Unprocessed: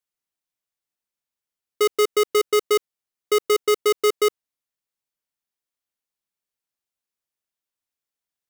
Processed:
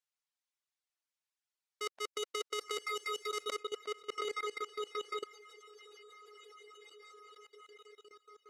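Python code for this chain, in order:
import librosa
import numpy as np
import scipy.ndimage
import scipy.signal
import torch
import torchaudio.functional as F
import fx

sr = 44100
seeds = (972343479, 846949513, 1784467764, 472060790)

y = scipy.signal.sosfilt(scipy.signal.butter(2, 7500.0, 'lowpass', fs=sr, output='sos'), x)
y = fx.echo_diffused(y, sr, ms=941, feedback_pct=52, wet_db=-14)
y = fx.auto_swell(y, sr, attack_ms=161.0)
y = scipy.signal.sosfilt(scipy.signal.butter(2, 710.0, 'highpass', fs=sr, output='sos'), y)
y = fx.over_compress(y, sr, threshold_db=-32.0, ratio=-1.0)
y = y + 10.0 ** (-11.5 / 20.0) * np.pad(y, (int(364 * sr / 1000.0), 0))[:len(y)]
y = fx.dereverb_blind(y, sr, rt60_s=0.92)
y = fx.high_shelf(y, sr, hz=4400.0, db=fx.steps((0.0, 2.5), (3.54, -9.0)))
y = fx.level_steps(y, sr, step_db=20)
y = F.gain(torch.from_numpy(y), 3.5).numpy()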